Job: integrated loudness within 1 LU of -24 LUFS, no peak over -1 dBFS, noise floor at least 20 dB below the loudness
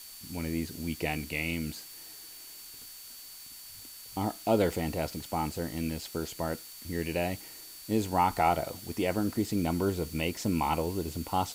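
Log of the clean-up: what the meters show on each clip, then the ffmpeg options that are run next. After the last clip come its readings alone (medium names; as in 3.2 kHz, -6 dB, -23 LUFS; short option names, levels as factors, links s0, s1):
steady tone 4.5 kHz; tone level -52 dBFS; noise floor -47 dBFS; noise floor target -52 dBFS; loudness -31.5 LUFS; peak level -12.5 dBFS; loudness target -24.0 LUFS
-> -af "bandreject=f=4500:w=30"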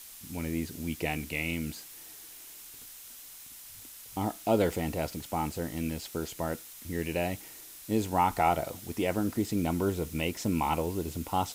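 steady tone not found; noise floor -48 dBFS; noise floor target -52 dBFS
-> -af "afftdn=nr=6:nf=-48"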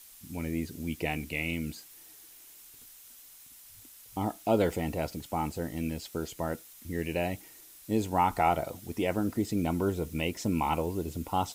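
noise floor -53 dBFS; loudness -32.0 LUFS; peak level -13.0 dBFS; loudness target -24.0 LUFS
-> -af "volume=2.51"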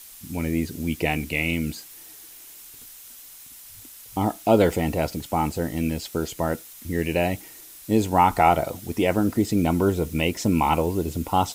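loudness -24.0 LUFS; peak level -5.0 dBFS; noise floor -45 dBFS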